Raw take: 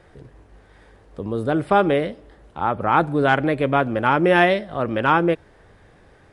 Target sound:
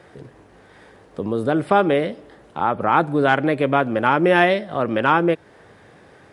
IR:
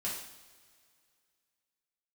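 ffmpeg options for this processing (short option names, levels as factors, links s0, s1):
-filter_complex "[0:a]highpass=130,asplit=2[s0][s1];[s1]acompressor=threshold=0.0501:ratio=6,volume=1.12[s2];[s0][s2]amix=inputs=2:normalize=0,volume=0.841"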